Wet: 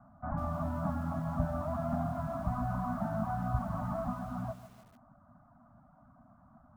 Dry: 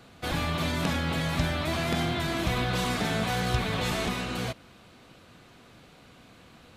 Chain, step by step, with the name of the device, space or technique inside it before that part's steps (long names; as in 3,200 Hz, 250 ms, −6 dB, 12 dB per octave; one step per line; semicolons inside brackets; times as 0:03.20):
elliptic band-stop filter 240–670 Hz, stop band 50 dB
reverb reduction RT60 0.53 s
elliptic low-pass filter 1,300 Hz, stop band 60 dB
inside a cardboard box (low-pass filter 2,700 Hz; hollow resonant body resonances 300/590 Hz, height 12 dB, ringing for 75 ms)
feedback echo at a low word length 147 ms, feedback 55%, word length 8 bits, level −12.5 dB
level −2.5 dB